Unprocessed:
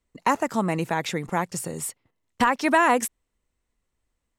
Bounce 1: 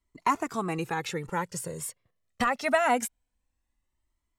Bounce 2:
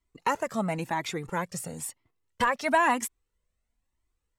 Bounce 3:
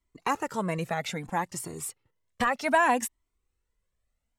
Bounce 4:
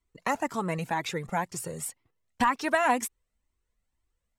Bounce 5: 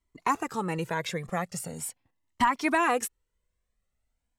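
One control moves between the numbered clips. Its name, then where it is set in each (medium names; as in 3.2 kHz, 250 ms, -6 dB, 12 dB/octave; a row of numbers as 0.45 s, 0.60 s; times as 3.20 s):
Shepard-style flanger, rate: 0.24 Hz, 1 Hz, 0.63 Hz, 2 Hz, 0.41 Hz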